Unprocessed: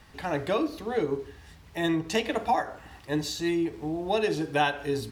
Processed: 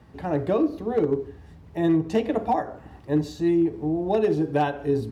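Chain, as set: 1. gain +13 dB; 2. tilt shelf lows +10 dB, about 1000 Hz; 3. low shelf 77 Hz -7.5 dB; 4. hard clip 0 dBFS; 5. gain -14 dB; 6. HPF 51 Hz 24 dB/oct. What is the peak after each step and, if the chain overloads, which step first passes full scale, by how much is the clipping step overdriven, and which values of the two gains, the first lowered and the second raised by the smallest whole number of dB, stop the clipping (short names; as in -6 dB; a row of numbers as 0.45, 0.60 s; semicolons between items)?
+2.0, +4.0, +3.5, 0.0, -14.0, -12.0 dBFS; step 1, 3.5 dB; step 1 +9 dB, step 5 -10 dB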